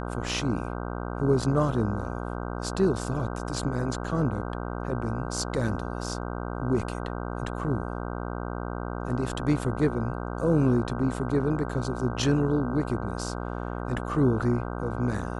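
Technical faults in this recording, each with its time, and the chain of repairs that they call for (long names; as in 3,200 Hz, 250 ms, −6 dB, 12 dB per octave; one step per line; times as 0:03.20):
mains buzz 60 Hz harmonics 26 −33 dBFS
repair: hum removal 60 Hz, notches 26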